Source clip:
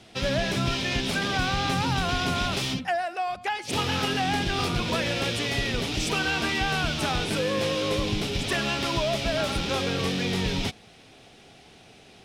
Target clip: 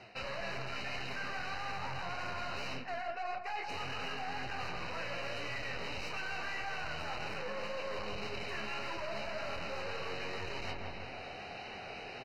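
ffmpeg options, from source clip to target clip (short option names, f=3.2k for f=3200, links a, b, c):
-filter_complex "[0:a]asplit=2[a][b];[b]adelay=24,volume=-4.5dB[c];[a][c]amix=inputs=2:normalize=0,aeval=exprs='0.299*(cos(1*acos(clip(val(0)/0.299,-1,1)))-cos(1*PI/2))+0.0668*(cos(6*acos(clip(val(0)/0.299,-1,1)))-cos(6*PI/2))':c=same,bass=f=250:g=2,treble=f=4k:g=-8,asoftclip=type=hard:threshold=-23dB,firequalizer=gain_entry='entry(290,0);entry(550,10);entry(3500,12);entry(8800,-5)':delay=0.05:min_phase=1,flanger=delay=7.3:depth=7.7:regen=45:speed=1.8:shape=triangular,asuperstop=centerf=3400:order=12:qfactor=4.4,asplit=2[d][e];[e]adelay=164,lowpass=f=1.6k:p=1,volume=-7dB,asplit=2[f][g];[g]adelay=164,lowpass=f=1.6k:p=1,volume=0.38,asplit=2[h][i];[i]adelay=164,lowpass=f=1.6k:p=1,volume=0.38,asplit=2[j][k];[k]adelay=164,lowpass=f=1.6k:p=1,volume=0.38[l];[d][f][h][j][l]amix=inputs=5:normalize=0,areverse,acompressor=threshold=-41dB:ratio=4,areverse,volume=1.5dB"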